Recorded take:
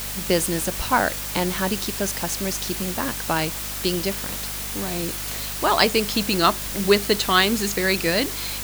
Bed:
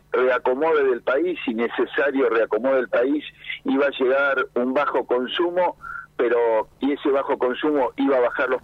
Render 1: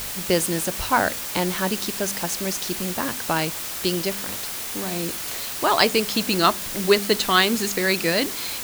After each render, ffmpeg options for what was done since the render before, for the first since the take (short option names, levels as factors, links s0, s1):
-af "bandreject=f=50:t=h:w=4,bandreject=f=100:t=h:w=4,bandreject=f=150:t=h:w=4,bandreject=f=200:t=h:w=4,bandreject=f=250:t=h:w=4"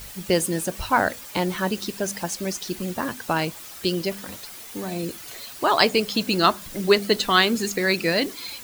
-af "afftdn=nr=11:nf=-31"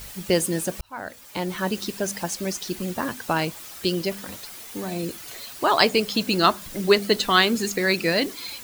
-filter_complex "[0:a]asplit=2[s0][s1];[s0]atrim=end=0.81,asetpts=PTS-STARTPTS,afade=t=out:st=0.806:d=0.004:c=hsin[s2];[s1]atrim=start=0.81,asetpts=PTS-STARTPTS,afade=t=in:d=0.96[s3];[s2][s3]concat=n=2:v=0:a=1"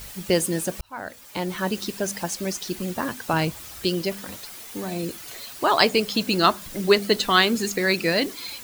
-filter_complex "[0:a]asettb=1/sr,asplit=3[s0][s1][s2];[s0]atrim=end=3.334[s3];[s1]atrim=start=3.33:end=3.83,asetpts=PTS-STARTPTS,afade=t=in:d=0.004:c=qsin,afade=t=out:st=0.496:d=0.004:c=qsin,equalizer=f=63:w=0.73:g=15[s4];[s2]atrim=start=3.826[s5];[s3][s4]acrossfade=d=0.004:c1=hsin:c2=qsin[s6];[s6][s5]acrossfade=d=0.004:c1=qsin:c2=hsin"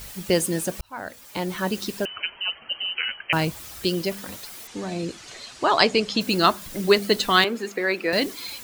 -filter_complex "[0:a]asettb=1/sr,asplit=3[s0][s1][s2];[s0]atrim=end=2.054[s3];[s1]atrim=start=2.05:end=3.33,asetpts=PTS-STARTPTS,afade=t=in:d=0.004:c=qsin,afade=t=out:st=1.276:d=0.004:c=qsin,lowpass=f=2700:t=q:w=0.5098,lowpass=f=2700:t=q:w=0.6013,lowpass=f=2700:t=q:w=0.9,lowpass=f=2700:t=q:w=2.563,afreqshift=-3200[s4];[s2]atrim=start=3.326[s5];[s3][s4]acrossfade=d=0.004:c1=hsin:c2=qsin[s6];[s6][s5]acrossfade=d=0.004:c1=qsin:c2=hsin,asettb=1/sr,asplit=3[s7][s8][s9];[s7]atrim=end=4.674[s10];[s8]atrim=start=4.67:end=6.21,asetpts=PTS-STARTPTS,afade=t=in:d=0.004:c=qsin,afade=t=out:st=1.536:d=0.004:c=qsin,lowpass=f=7700:w=0.5412,lowpass=f=7700:w=1.3066[s11];[s9]atrim=start=6.206[s12];[s10][s11]acrossfade=d=0.004:c1=hsin:c2=qsin[s13];[s13][s12]acrossfade=d=0.004:c1=qsin:c2=hsin,asettb=1/sr,asplit=3[s14][s15][s16];[s14]atrim=end=7.444[s17];[s15]atrim=start=7.44:end=8.13,asetpts=PTS-STARTPTS,afade=t=in:d=0.004:c=qsin,afade=t=out:st=0.686:d=0.004:c=qsin,acrossover=split=250 2800:gain=0.0631 1 0.2[s18][s19][s20];[s18][s19][s20]amix=inputs=3:normalize=0[s21];[s16]atrim=start=8.126[s22];[s17][s21]acrossfade=d=0.004:c1=hsin:c2=qsin[s23];[s23][s22]acrossfade=d=0.004:c1=qsin:c2=hsin"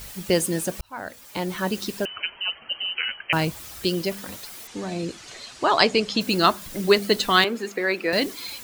-af anull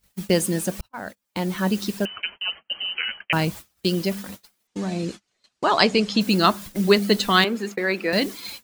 -af "agate=range=0.0224:threshold=0.0178:ratio=16:detection=peak,equalizer=f=200:t=o:w=0.38:g=7.5"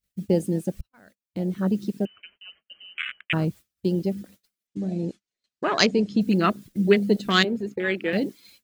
-af "afwtdn=0.0631,equalizer=f=900:w=1.7:g=-9.5"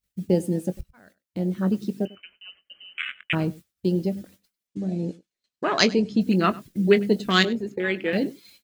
-filter_complex "[0:a]asplit=2[s0][s1];[s1]adelay=22,volume=0.2[s2];[s0][s2]amix=inputs=2:normalize=0,aecho=1:1:98:0.0841"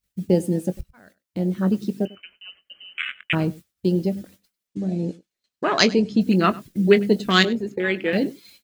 -af "volume=1.33,alimiter=limit=0.891:level=0:latency=1"